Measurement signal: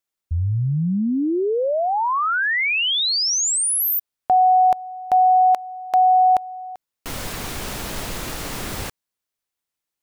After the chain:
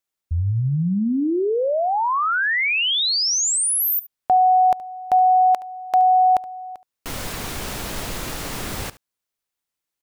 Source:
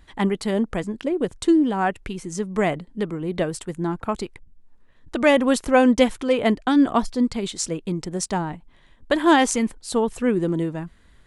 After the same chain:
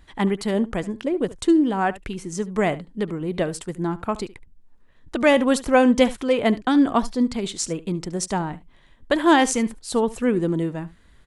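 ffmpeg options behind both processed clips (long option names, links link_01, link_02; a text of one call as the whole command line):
ffmpeg -i in.wav -af "aecho=1:1:72:0.119" out.wav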